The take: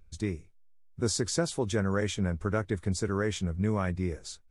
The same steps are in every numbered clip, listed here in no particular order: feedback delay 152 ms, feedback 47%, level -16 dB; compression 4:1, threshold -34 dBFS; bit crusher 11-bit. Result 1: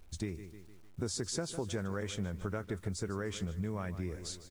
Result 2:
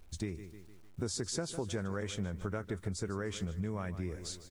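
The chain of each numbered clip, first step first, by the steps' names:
feedback delay > compression > bit crusher; feedback delay > bit crusher > compression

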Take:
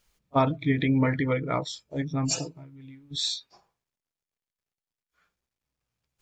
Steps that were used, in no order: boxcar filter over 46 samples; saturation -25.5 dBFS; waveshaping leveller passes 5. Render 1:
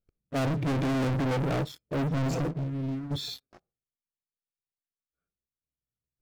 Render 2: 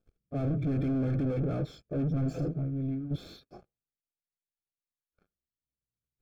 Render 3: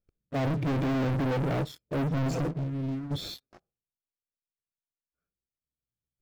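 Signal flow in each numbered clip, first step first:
boxcar filter > saturation > waveshaping leveller; saturation > waveshaping leveller > boxcar filter; saturation > boxcar filter > waveshaping leveller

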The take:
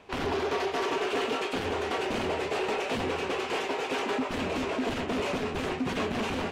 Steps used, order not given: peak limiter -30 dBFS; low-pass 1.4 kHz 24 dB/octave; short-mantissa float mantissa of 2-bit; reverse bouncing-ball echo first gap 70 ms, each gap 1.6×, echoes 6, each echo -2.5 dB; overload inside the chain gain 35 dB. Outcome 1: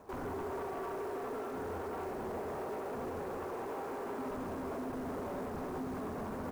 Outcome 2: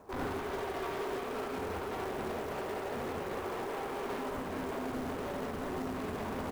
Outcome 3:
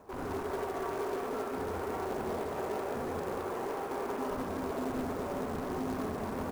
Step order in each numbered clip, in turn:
reverse bouncing-ball echo > peak limiter > low-pass > short-mantissa float > overload inside the chain; low-pass > overload inside the chain > reverse bouncing-ball echo > short-mantissa float > peak limiter; peak limiter > low-pass > overload inside the chain > reverse bouncing-ball echo > short-mantissa float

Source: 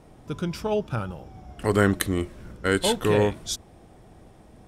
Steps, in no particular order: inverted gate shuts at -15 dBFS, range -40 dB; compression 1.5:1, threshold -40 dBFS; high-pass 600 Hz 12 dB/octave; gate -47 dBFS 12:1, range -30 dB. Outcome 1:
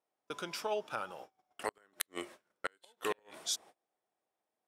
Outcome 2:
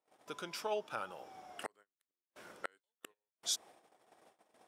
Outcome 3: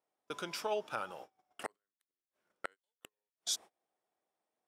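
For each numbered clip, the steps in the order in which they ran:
high-pass > gate > inverted gate > compression; inverted gate > gate > compression > high-pass; inverted gate > high-pass > compression > gate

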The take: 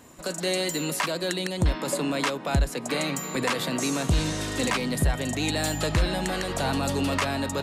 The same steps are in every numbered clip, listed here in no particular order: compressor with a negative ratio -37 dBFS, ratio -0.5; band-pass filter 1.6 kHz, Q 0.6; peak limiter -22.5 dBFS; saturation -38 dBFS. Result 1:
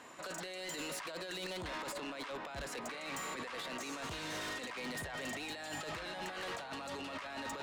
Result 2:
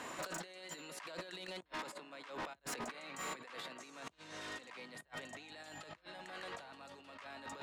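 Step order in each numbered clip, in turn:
band-pass filter > peak limiter > compressor with a negative ratio > saturation; compressor with a negative ratio > band-pass filter > saturation > peak limiter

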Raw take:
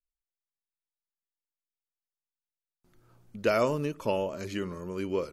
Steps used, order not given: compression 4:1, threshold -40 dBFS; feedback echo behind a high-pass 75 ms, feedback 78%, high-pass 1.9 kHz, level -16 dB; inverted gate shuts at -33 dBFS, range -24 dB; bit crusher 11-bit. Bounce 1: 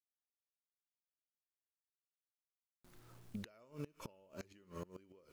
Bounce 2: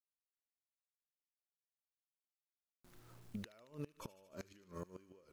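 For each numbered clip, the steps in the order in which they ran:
feedback echo behind a high-pass > compression > bit crusher > inverted gate; bit crusher > compression > inverted gate > feedback echo behind a high-pass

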